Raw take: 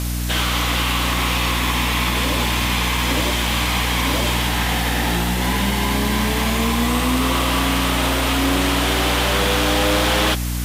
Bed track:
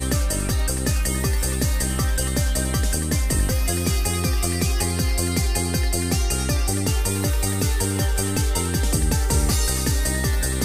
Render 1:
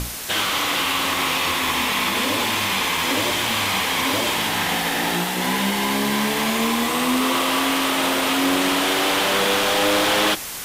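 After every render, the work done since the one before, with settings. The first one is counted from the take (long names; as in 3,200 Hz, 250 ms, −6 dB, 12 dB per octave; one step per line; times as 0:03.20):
mains-hum notches 60/120/180/240/300 Hz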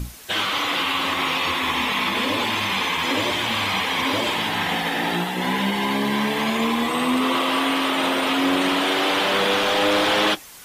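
broadband denoise 12 dB, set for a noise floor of −28 dBFS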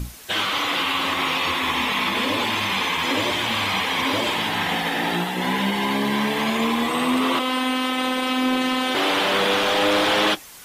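0:07.39–0:08.95: phases set to zero 257 Hz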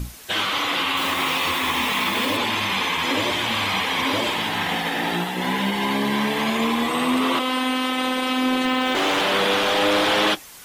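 0:00.97–0:02.37: spike at every zero crossing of −27.5 dBFS
0:04.27–0:05.81: mu-law and A-law mismatch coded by A
0:08.65–0:09.22: windowed peak hold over 3 samples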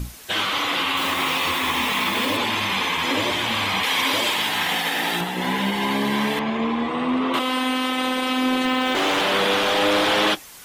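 0:03.83–0:05.21: spectral tilt +2 dB per octave
0:06.39–0:07.34: head-to-tape spacing loss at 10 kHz 25 dB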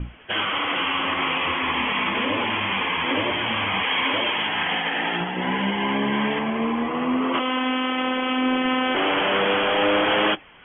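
Chebyshev low-pass filter 3,300 Hz, order 10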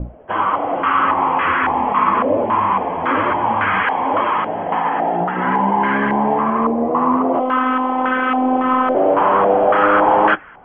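in parallel at −4 dB: hard clipping −20.5 dBFS, distortion −11 dB
on the sum: low-pass on a step sequencer 3.6 Hz 620–1,500 Hz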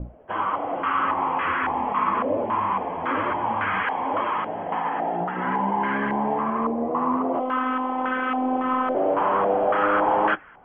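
level −7.5 dB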